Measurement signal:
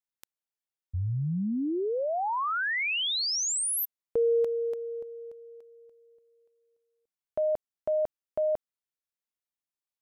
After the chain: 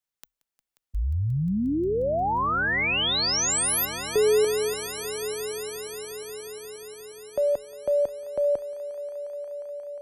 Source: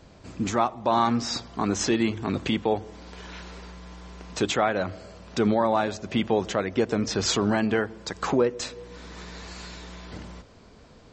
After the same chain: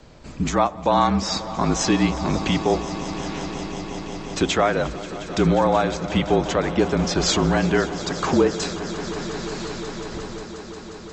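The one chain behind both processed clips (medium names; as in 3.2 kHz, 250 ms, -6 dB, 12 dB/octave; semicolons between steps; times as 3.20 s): frequency shift -39 Hz; echo with a slow build-up 178 ms, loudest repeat 5, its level -17 dB; trim +4 dB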